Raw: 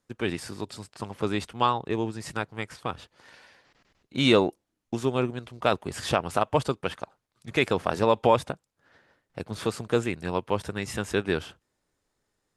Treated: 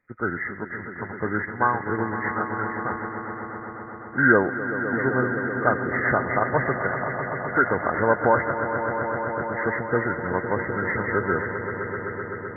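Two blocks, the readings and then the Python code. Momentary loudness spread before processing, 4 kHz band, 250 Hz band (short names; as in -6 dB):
16 LU, under -40 dB, +2.5 dB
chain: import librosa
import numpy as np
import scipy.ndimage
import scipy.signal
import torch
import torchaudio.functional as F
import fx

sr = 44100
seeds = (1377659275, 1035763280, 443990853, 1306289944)

y = fx.freq_compress(x, sr, knee_hz=1200.0, ratio=4.0)
y = fx.echo_swell(y, sr, ms=128, loudest=5, wet_db=-12.0)
y = fx.dynamic_eq(y, sr, hz=1900.0, q=1.4, threshold_db=-40.0, ratio=4.0, max_db=6)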